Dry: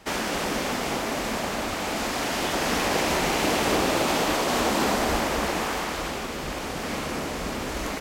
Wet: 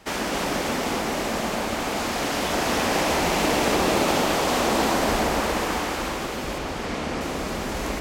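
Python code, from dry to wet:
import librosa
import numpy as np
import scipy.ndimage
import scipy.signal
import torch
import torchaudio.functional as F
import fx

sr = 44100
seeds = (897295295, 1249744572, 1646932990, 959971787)

y = fx.air_absorb(x, sr, metres=50.0, at=(6.58, 7.21))
y = fx.echo_alternate(y, sr, ms=138, hz=1100.0, feedback_pct=60, wet_db=-2.0)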